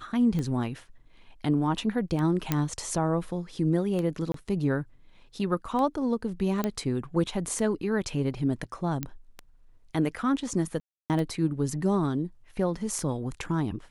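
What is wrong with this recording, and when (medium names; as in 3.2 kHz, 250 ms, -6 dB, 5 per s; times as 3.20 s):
tick 33 1/3 rpm -20 dBFS
2.52 s: pop -10 dBFS
4.32–4.34 s: dropout 23 ms
6.64 s: pop -14 dBFS
9.03 s: pop -15 dBFS
10.80–11.10 s: dropout 298 ms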